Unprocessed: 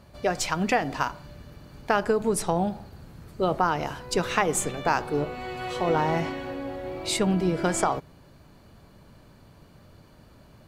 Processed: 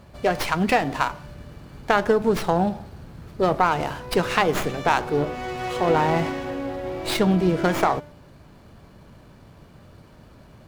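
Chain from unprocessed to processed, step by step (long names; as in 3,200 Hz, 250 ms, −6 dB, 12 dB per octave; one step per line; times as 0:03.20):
hum removal 295.2 Hz, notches 20
windowed peak hold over 5 samples
level +4.5 dB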